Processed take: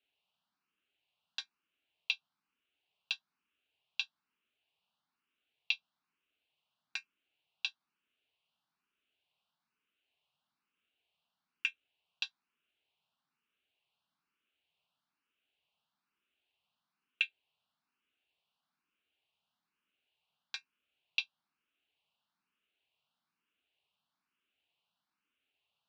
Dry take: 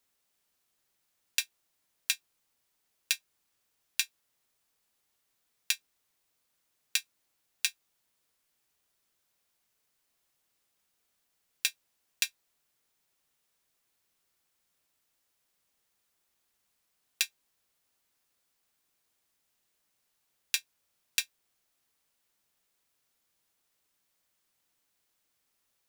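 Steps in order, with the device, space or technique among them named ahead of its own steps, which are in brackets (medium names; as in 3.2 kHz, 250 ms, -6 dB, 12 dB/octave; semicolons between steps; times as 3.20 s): barber-pole phaser into a guitar amplifier (barber-pole phaser +1.1 Hz; saturation -15.5 dBFS, distortion -14 dB; cabinet simulation 100–3700 Hz, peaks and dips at 110 Hz -8 dB, 350 Hz -5 dB, 520 Hz -9 dB, 1.9 kHz -9 dB, 2.8 kHz +8 dB)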